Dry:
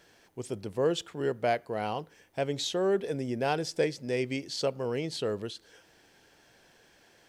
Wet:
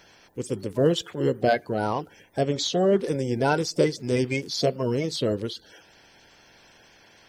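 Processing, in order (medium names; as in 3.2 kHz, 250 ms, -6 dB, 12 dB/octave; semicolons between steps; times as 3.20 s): coarse spectral quantiser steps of 30 dB; 2.41–2.99 s: low-pass 7.7 kHz 12 dB/octave; trim +7 dB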